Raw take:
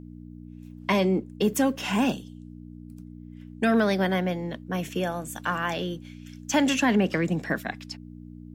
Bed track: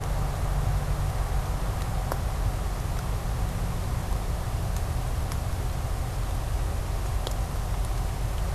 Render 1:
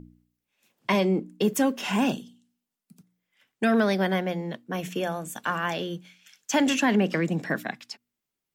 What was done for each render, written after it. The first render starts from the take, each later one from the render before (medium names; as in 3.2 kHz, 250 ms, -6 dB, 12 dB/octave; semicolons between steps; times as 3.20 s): de-hum 60 Hz, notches 5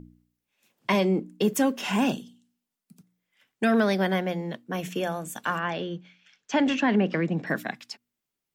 5.59–7.47 s: distance through air 170 m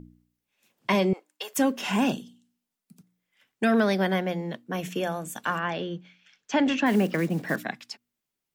1.13–1.58 s: high-pass 710 Hz 24 dB/octave; 6.86–7.57 s: block-companded coder 5-bit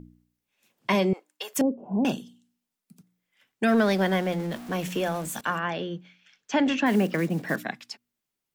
1.61–2.05 s: inverse Chebyshev low-pass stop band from 1.7 kHz, stop band 50 dB; 3.68–5.41 s: jump at every zero crossing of -35.5 dBFS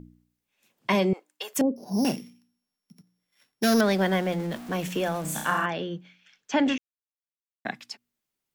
1.76–3.81 s: sorted samples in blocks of 8 samples; 5.21–5.66 s: flutter echo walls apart 5.6 m, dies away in 0.63 s; 6.78–7.65 s: mute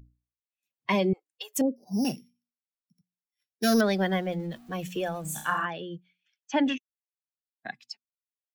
expander on every frequency bin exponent 1.5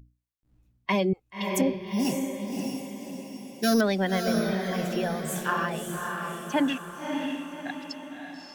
echo that smears into a reverb 585 ms, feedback 49%, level -4 dB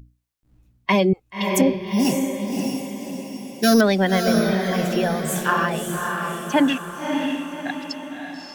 trim +7 dB